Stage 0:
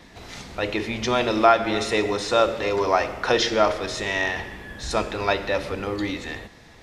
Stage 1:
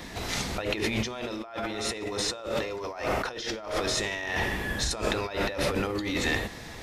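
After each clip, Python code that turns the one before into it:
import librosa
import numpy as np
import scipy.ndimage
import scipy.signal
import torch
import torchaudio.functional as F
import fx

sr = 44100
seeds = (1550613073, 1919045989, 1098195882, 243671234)

y = fx.high_shelf(x, sr, hz=9700.0, db=10.0)
y = fx.over_compress(y, sr, threshold_db=-32.0, ratio=-1.0)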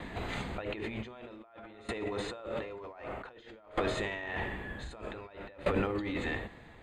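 y = scipy.signal.lfilter(np.full(8, 1.0 / 8), 1.0, x)
y = fx.tremolo_decay(y, sr, direction='decaying', hz=0.53, depth_db=19)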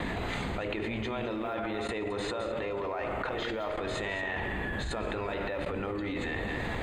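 y = x + 10.0 ** (-16.0 / 20.0) * np.pad(x, (int(214 * sr / 1000.0), 0))[:len(x)]
y = fx.env_flatten(y, sr, amount_pct=100)
y = y * librosa.db_to_amplitude(-7.5)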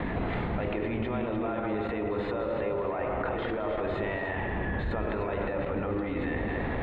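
y = fx.air_absorb(x, sr, metres=480.0)
y = fx.echo_alternate(y, sr, ms=150, hz=1100.0, feedback_pct=51, wet_db=-3.5)
y = y * librosa.db_to_amplitude(3.0)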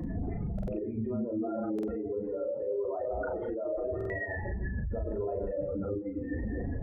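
y = fx.spec_expand(x, sr, power=3.0)
y = fx.doubler(y, sr, ms=37.0, db=-4)
y = fx.buffer_glitch(y, sr, at_s=(0.54, 1.74, 3.96), block=2048, repeats=2)
y = y * librosa.db_to_amplitude(-3.5)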